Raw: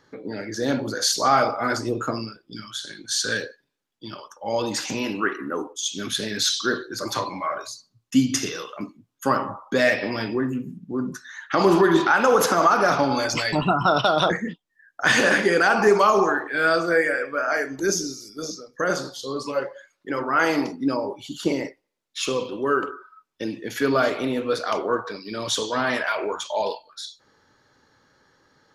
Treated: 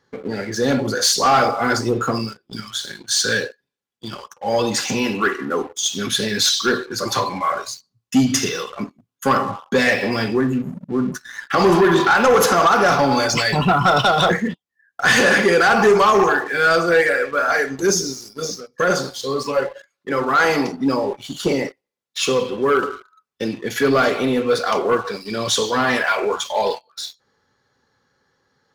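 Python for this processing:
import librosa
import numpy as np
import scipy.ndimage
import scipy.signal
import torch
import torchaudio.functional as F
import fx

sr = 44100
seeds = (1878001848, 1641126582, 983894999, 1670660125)

y = fx.notch_comb(x, sr, f0_hz=310.0)
y = fx.leveller(y, sr, passes=2)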